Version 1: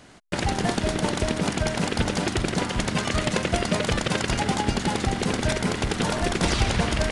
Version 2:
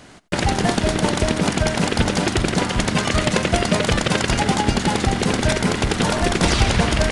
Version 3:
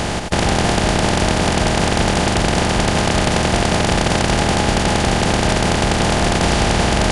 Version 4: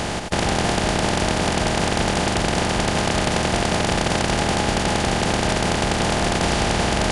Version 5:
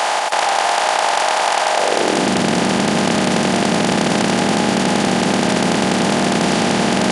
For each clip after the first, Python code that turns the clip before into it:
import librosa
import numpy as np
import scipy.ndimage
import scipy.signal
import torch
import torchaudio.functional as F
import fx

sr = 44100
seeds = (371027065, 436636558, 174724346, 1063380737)

y1 = x + 10.0 ** (-20.5 / 20.0) * np.pad(x, (int(87 * sr / 1000.0), 0))[:len(x)]
y1 = F.gain(torch.from_numpy(y1), 5.5).numpy()
y2 = fx.bin_compress(y1, sr, power=0.2)
y2 = F.gain(torch.from_numpy(y2), -5.5).numpy()
y3 = fx.low_shelf(y2, sr, hz=140.0, db=-3.5)
y3 = F.gain(torch.from_numpy(y3), -3.5).numpy()
y4 = fx.filter_sweep_highpass(y3, sr, from_hz=800.0, to_hz=210.0, start_s=1.68, end_s=2.31, q=2.0)
y4 = fx.env_flatten(y4, sr, amount_pct=70)
y4 = F.gain(torch.from_numpy(y4), 1.5).numpy()